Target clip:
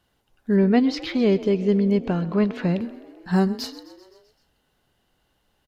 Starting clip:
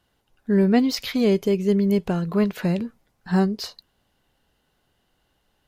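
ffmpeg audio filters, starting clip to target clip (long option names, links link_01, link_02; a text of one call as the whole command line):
ffmpeg -i in.wav -filter_complex "[0:a]asettb=1/sr,asplit=3[link_01][link_02][link_03];[link_01]atrim=end=0.564[link_04];[link_02]atrim=start=0.56:end=2.81,asetpts=PTS-STARTPTS,afade=type=in:duration=0.004:curve=qsin,afade=type=out:start_time=2.246:duration=0.004:curve=qsin,lowpass=4100[link_05];[link_03]atrim=start=2.806[link_06];[link_04][link_05]acrossfade=duration=0.004:curve1=hsin:curve2=qsin[link_07];[link_07][link_06]acrossfade=duration=0.004:curve1=qsin:curve2=hsin,asplit=7[link_08][link_09][link_10][link_11][link_12][link_13][link_14];[link_09]adelay=129,afreqshift=36,volume=-18dB[link_15];[link_10]adelay=258,afreqshift=72,volume=-22dB[link_16];[link_11]adelay=387,afreqshift=108,volume=-26dB[link_17];[link_12]adelay=516,afreqshift=144,volume=-30dB[link_18];[link_13]adelay=645,afreqshift=180,volume=-34.1dB[link_19];[link_14]adelay=774,afreqshift=216,volume=-38.1dB[link_20];[link_08][link_15][link_16][link_17][link_18][link_19][link_20]amix=inputs=7:normalize=0" out.wav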